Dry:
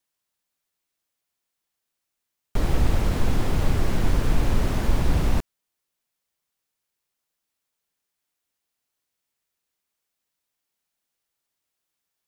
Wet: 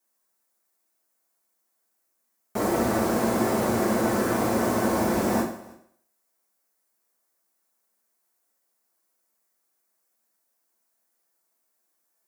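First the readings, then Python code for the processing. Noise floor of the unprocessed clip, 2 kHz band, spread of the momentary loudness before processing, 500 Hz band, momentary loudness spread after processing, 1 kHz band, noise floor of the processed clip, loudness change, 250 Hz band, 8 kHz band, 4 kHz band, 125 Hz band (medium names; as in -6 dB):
-82 dBFS, +3.5 dB, 5 LU, +8.0 dB, 5 LU, +7.0 dB, -75 dBFS, +1.5 dB, +5.5 dB, +6.0 dB, -1.0 dB, -9.0 dB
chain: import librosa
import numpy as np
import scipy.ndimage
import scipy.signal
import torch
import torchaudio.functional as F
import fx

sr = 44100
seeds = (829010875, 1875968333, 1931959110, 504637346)

y = scipy.signal.sosfilt(scipy.signal.butter(2, 290.0, 'highpass', fs=sr, output='sos'), x)
y = fx.peak_eq(y, sr, hz=3200.0, db=-13.5, octaves=1.3)
y = y + 10.0 ** (-23.5 / 20.0) * np.pad(y, (int(318 * sr / 1000.0), 0))[:len(y)]
y = fx.rev_fdn(y, sr, rt60_s=0.63, lf_ratio=0.8, hf_ratio=0.9, size_ms=27.0, drr_db=-4.0)
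y = y * librosa.db_to_amplitude(3.5)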